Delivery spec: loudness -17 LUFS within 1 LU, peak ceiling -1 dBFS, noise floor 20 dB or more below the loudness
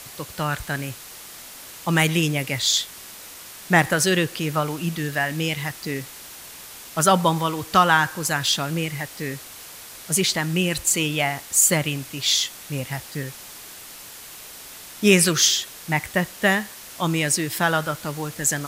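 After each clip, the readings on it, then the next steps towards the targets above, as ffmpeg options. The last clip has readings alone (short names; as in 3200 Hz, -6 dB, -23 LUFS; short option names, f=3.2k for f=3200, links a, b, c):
noise floor -41 dBFS; noise floor target -42 dBFS; loudness -21.5 LUFS; peak -2.0 dBFS; loudness target -17.0 LUFS
-> -af "afftdn=nr=6:nf=-41"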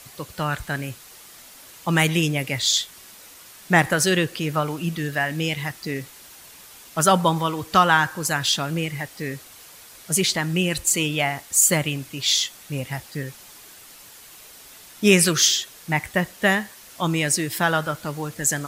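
noise floor -46 dBFS; loudness -21.5 LUFS; peak -2.0 dBFS; loudness target -17.0 LUFS
-> -af "volume=4.5dB,alimiter=limit=-1dB:level=0:latency=1"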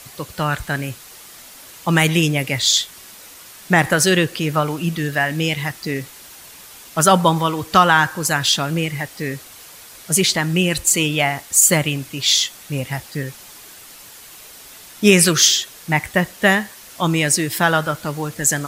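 loudness -17.5 LUFS; peak -1.0 dBFS; noise floor -41 dBFS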